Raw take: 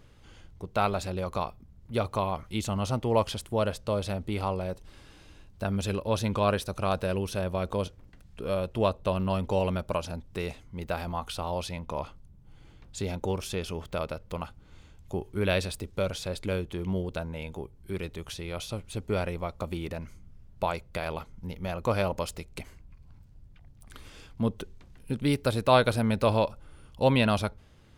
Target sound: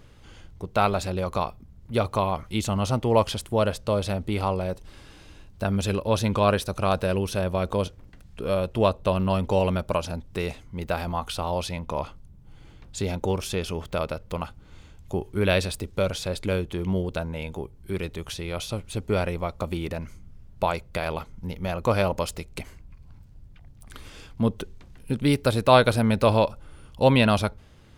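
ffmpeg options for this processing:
ffmpeg -i in.wav -af "volume=4.5dB" out.wav

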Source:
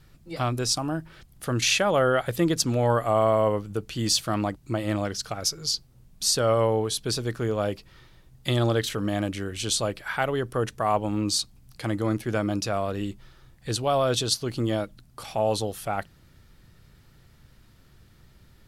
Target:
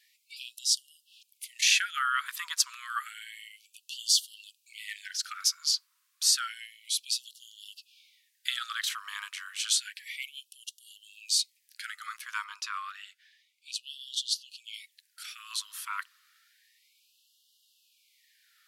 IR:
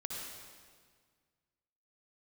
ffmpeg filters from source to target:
-filter_complex "[0:a]asettb=1/sr,asplit=3[link_01][link_02][link_03];[link_01]atrim=end=12.444[link_04];[link_02]atrim=start=12.44:end=14.74,asetpts=PTS-STARTPTS,afade=type=in:duration=0.004:curve=qsin,afade=type=out:start_time=2.296:duration=0.004:curve=qsin,lowpass=frequency=3700:poles=1[link_05];[link_03]atrim=start=14.736[link_06];[link_04][link_05]acrossfade=duration=0.004:curve1=hsin:curve2=qsin[link_07];[link_07][link_06]acrossfade=duration=0.004:curve1=qsin:curve2=hsin,afftfilt=real='re*gte(b*sr/1024,930*pow(2800/930,0.5+0.5*sin(2*PI*0.3*pts/sr)))':imag='im*gte(b*sr/1024,930*pow(2800/930,0.5+0.5*sin(2*PI*0.3*pts/sr)))':win_size=1024:overlap=0.75"

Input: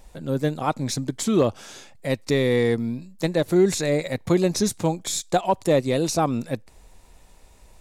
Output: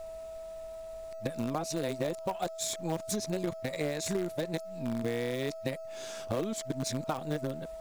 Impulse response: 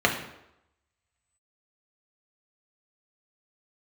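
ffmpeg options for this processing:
-filter_complex "[0:a]areverse,lowshelf=frequency=96:gain=-3,acompressor=threshold=-28dB:ratio=8,aeval=exprs='val(0)+0.0141*sin(2*PI*650*n/s)':channel_layout=same,asplit=2[link_01][link_02];[link_02]acrusher=bits=5:dc=4:mix=0:aa=0.000001,volume=-9dB[link_03];[link_01][link_03]amix=inputs=2:normalize=0,volume=-4.5dB"

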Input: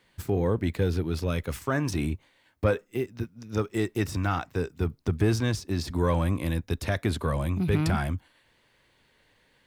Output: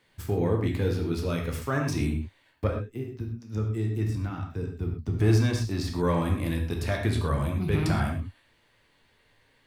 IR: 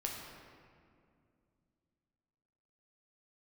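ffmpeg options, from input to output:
-filter_complex "[0:a]asettb=1/sr,asplit=3[link_01][link_02][link_03];[link_01]atrim=end=2.674[link_04];[link_02]atrim=start=2.67:end=5.14,asetpts=PTS-STARTPTS,afade=type=in:duration=0.004:curve=qsin,afade=type=out:start_time=2.466:duration=0.004:curve=qsin,acrossover=split=300[link_05][link_06];[link_06]acompressor=threshold=-59dB:ratio=1.5[link_07];[link_05][link_07]amix=inputs=2:normalize=0[link_08];[link_03]atrim=start=5.136[link_09];[link_04][link_08]acrossfade=duration=0.004:curve1=hsin:curve2=qsin[link_10];[link_10][link_09]acrossfade=duration=0.004:curve1=qsin:curve2=hsin[link_11];[1:a]atrim=start_sample=2205,afade=type=out:start_time=0.18:duration=0.01,atrim=end_sample=8379[link_12];[link_11][link_12]afir=irnorm=-1:irlink=0"

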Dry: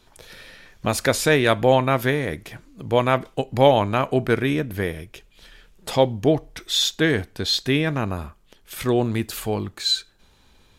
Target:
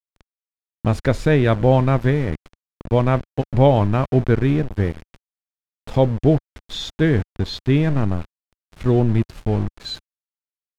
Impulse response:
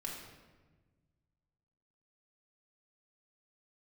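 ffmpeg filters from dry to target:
-af "aeval=exprs='val(0)*gte(abs(val(0)),0.0422)':channel_layout=same,aemphasis=mode=reproduction:type=riaa,volume=-2.5dB"

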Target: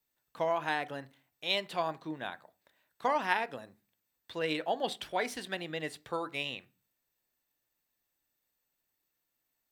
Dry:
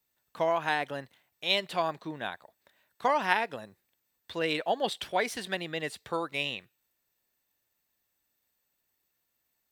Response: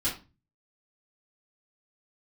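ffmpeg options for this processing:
-filter_complex "[0:a]asplit=2[link_01][link_02];[1:a]atrim=start_sample=2205,lowpass=1800[link_03];[link_02][link_03]afir=irnorm=-1:irlink=0,volume=-18dB[link_04];[link_01][link_04]amix=inputs=2:normalize=0,volume=-4dB"

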